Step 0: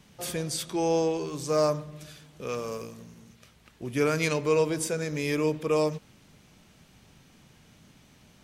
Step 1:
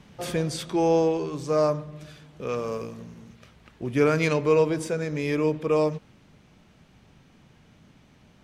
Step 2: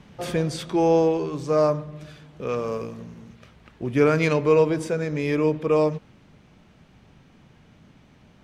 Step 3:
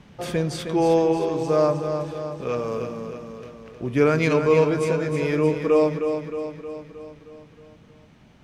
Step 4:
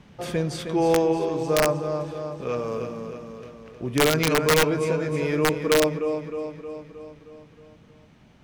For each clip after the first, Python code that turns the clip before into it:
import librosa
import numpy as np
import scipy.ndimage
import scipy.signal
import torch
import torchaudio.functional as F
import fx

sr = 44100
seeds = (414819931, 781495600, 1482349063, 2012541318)

y1 = fx.lowpass(x, sr, hz=2400.0, slope=6)
y1 = fx.rider(y1, sr, range_db=4, speed_s=2.0)
y1 = y1 * 10.0 ** (3.5 / 20.0)
y2 = fx.high_shelf(y1, sr, hz=4600.0, db=-6.0)
y2 = y2 * 10.0 ** (2.5 / 20.0)
y3 = fx.echo_feedback(y2, sr, ms=312, feedback_pct=57, wet_db=-7.5)
y4 = (np.mod(10.0 ** (10.0 / 20.0) * y3 + 1.0, 2.0) - 1.0) / 10.0 ** (10.0 / 20.0)
y4 = y4 * 10.0 ** (-1.5 / 20.0)